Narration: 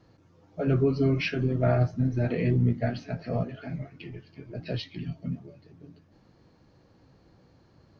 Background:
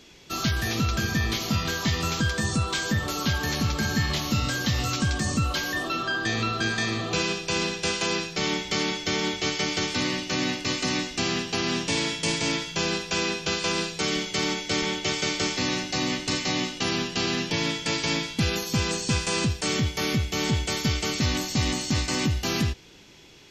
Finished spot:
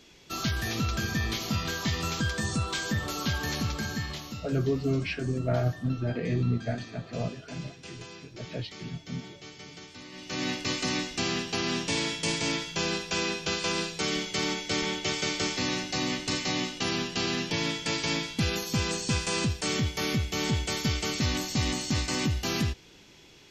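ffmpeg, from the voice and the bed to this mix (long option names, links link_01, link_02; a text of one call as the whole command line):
ffmpeg -i stem1.wav -i stem2.wav -filter_complex "[0:a]adelay=3850,volume=-3.5dB[link_01];[1:a]volume=12.5dB,afade=type=out:start_time=3.55:duration=0.96:silence=0.16788,afade=type=in:start_time=10.11:duration=0.41:silence=0.149624[link_02];[link_01][link_02]amix=inputs=2:normalize=0" out.wav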